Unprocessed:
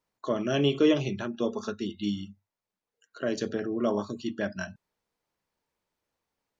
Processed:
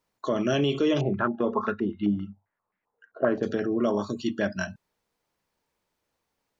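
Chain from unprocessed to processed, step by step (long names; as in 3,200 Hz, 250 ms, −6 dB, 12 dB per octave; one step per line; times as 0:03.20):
brickwall limiter −20 dBFS, peak gain reduction 8 dB
0:01.01–0:03.43: low-pass on a step sequencer 7.6 Hz 710–2,000 Hz
level +4.5 dB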